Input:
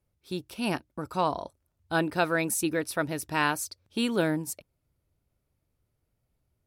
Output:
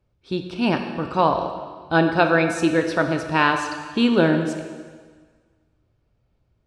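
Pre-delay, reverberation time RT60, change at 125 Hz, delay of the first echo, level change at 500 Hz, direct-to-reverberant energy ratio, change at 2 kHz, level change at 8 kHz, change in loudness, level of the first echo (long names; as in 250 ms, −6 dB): 6 ms, 1.6 s, +9.0 dB, no echo audible, +9.5 dB, 5.0 dB, +8.0 dB, −5.0 dB, +8.5 dB, no echo audible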